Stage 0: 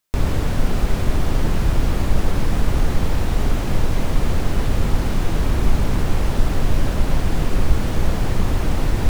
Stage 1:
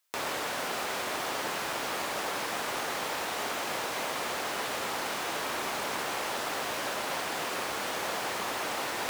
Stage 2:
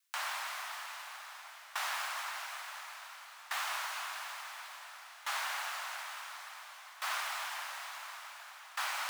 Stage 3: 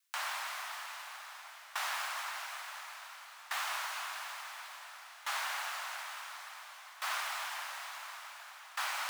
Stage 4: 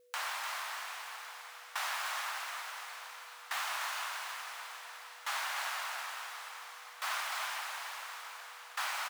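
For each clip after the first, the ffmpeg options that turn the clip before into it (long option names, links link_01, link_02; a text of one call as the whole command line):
ffmpeg -i in.wav -af "highpass=690" out.wav
ffmpeg -i in.wav -af "afreqshift=490,lowshelf=frequency=410:width_type=q:width=1.5:gain=-6.5,aeval=exprs='val(0)*pow(10,-19*if(lt(mod(0.57*n/s,1),2*abs(0.57)/1000),1-mod(0.57*n/s,1)/(2*abs(0.57)/1000),(mod(0.57*n/s,1)-2*abs(0.57)/1000)/(1-2*abs(0.57)/1000))/20)':channel_layout=same,volume=-2dB" out.wav
ffmpeg -i in.wav -af anull out.wav
ffmpeg -i in.wav -filter_complex "[0:a]aeval=exprs='val(0)+0.000708*sin(2*PI*490*n/s)':channel_layout=same,asplit=2[link_01][link_02];[link_02]aecho=0:1:299:0.501[link_03];[link_01][link_03]amix=inputs=2:normalize=0" out.wav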